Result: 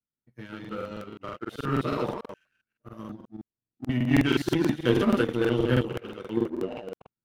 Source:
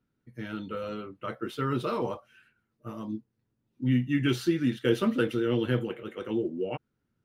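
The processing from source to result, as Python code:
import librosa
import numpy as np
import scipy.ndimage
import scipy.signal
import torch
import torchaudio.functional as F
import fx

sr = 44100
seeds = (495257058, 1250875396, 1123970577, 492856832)

y = fx.reverse_delay(x, sr, ms=130, wet_db=-2.0)
y = fx.power_curve(y, sr, exponent=1.4)
y = fx.buffer_crackle(y, sr, first_s=0.6, period_s=0.16, block=2048, kind='repeat')
y = y * 10.0 ** (3.5 / 20.0)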